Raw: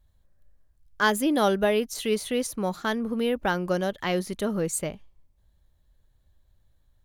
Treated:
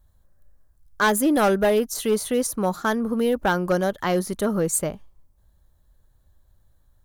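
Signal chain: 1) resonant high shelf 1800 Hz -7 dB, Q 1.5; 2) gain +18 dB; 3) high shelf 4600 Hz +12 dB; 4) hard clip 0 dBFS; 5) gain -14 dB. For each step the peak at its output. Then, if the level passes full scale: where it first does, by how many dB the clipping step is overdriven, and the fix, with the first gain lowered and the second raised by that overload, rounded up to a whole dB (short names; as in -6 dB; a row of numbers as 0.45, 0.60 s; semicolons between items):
-10.5, +7.5, +8.5, 0.0, -14.0 dBFS; step 2, 8.5 dB; step 2 +9 dB, step 5 -5 dB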